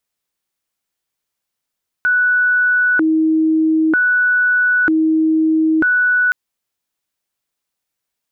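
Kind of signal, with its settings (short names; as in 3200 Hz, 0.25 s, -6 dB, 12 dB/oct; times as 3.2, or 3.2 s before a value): siren hi-lo 317–1480 Hz 0.53/s sine -11 dBFS 4.27 s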